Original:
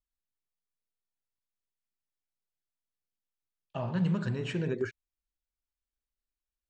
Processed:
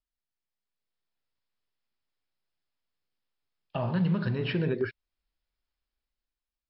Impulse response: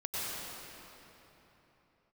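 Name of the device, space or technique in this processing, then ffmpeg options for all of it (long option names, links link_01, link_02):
low-bitrate web radio: -af "dynaudnorm=framelen=250:gausssize=7:maxgain=8dB,alimiter=limit=-18.5dB:level=0:latency=1:release=432" -ar 12000 -c:a libmp3lame -b:a 40k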